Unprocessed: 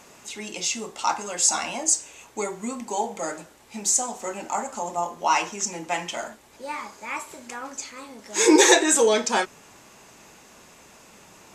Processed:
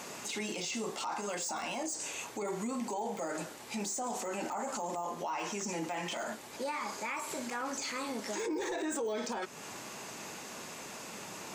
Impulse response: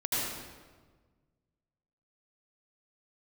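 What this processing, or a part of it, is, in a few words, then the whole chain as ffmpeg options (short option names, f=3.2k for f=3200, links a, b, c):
broadcast voice chain: -af "highpass=120,deesser=0.9,acompressor=threshold=-34dB:ratio=3,equalizer=f=4.5k:t=o:w=0.21:g=2.5,alimiter=level_in=10dB:limit=-24dB:level=0:latency=1:release=23,volume=-10dB,volume=5.5dB"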